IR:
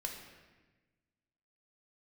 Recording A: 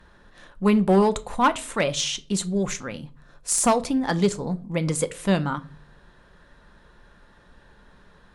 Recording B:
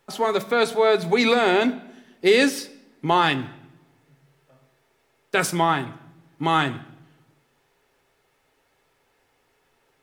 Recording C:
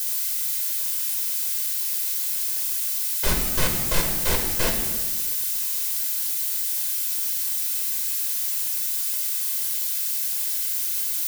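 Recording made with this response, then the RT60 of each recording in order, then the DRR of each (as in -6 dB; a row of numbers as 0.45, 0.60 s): C; 0.40, 0.90, 1.2 s; 11.0, 9.0, 1.0 dB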